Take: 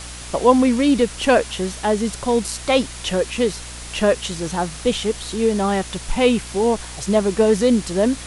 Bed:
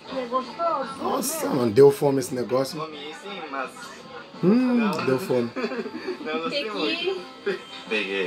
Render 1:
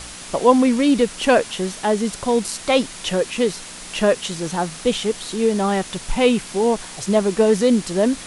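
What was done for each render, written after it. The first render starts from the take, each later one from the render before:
hum removal 60 Hz, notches 2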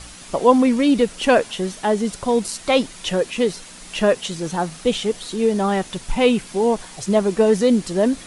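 broadband denoise 6 dB, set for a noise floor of −36 dBFS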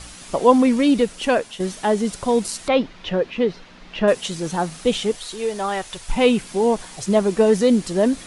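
0:00.86–0:01.60: fade out linear, to −7 dB
0:02.68–0:04.08: high-frequency loss of the air 250 metres
0:05.15–0:06.10: parametric band 220 Hz −13 dB 1.6 octaves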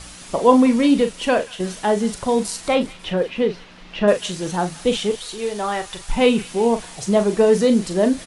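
double-tracking delay 39 ms −9 dB
delay with a high-pass on its return 181 ms, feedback 62%, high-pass 1,600 Hz, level −16 dB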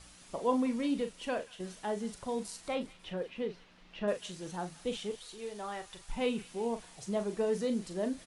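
level −16.5 dB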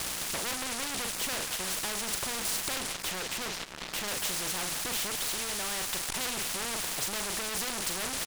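leveller curve on the samples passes 5
every bin compressed towards the loudest bin 4 to 1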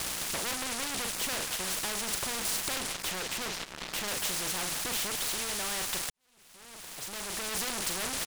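0:06.10–0:07.54: fade in quadratic

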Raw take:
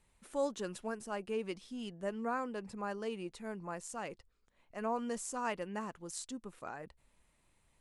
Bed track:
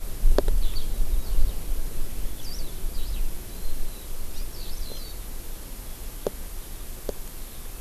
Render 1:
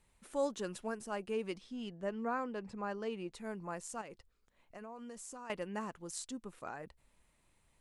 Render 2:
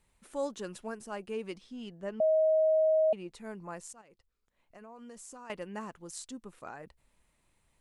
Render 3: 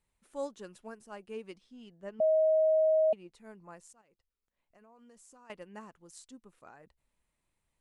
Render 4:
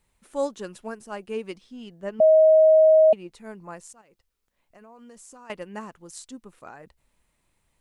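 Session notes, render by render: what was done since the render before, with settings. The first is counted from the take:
0:01.58–0:03.33: high-frequency loss of the air 73 metres; 0:04.01–0:05.50: downward compressor, threshold −45 dBFS
0:02.20–0:03.13: beep over 631 Hz −22 dBFS; 0:03.93–0:05.16: fade in, from −14.5 dB
expander for the loud parts 1.5 to 1, over −44 dBFS
level +10.5 dB

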